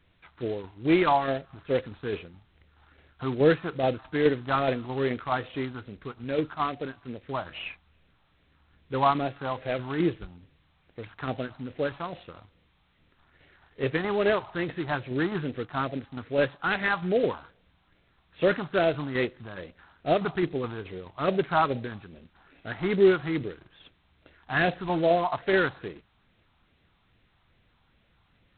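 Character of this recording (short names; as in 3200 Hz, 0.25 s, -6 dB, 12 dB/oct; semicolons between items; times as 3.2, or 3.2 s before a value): tremolo saw down 4.7 Hz, depth 40%; phasing stages 4, 2.4 Hz, lowest notch 460–1100 Hz; G.726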